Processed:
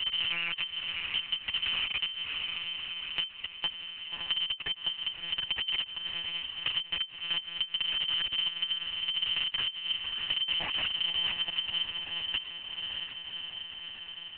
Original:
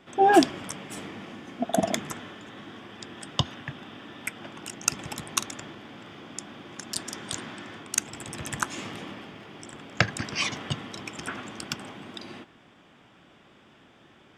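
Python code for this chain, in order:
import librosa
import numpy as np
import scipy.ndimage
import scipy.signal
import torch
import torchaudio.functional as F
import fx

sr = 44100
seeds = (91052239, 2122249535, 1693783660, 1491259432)

y = fx.block_reorder(x, sr, ms=104.0, group=7)
y = fx.highpass(y, sr, hz=72.0, slope=6)
y = fx.peak_eq(y, sr, hz=400.0, db=6.0, octaves=0.47)
y = fx.schmitt(y, sr, flips_db=-29.5)
y = fx.air_absorb(y, sr, metres=260.0)
y = fx.echo_diffused(y, sr, ms=608, feedback_pct=48, wet_db=-8.0)
y = fx.freq_invert(y, sr, carrier_hz=3100)
y = fx.lpc_monotone(y, sr, seeds[0], pitch_hz=170.0, order=8)
y = fx.band_squash(y, sr, depth_pct=70)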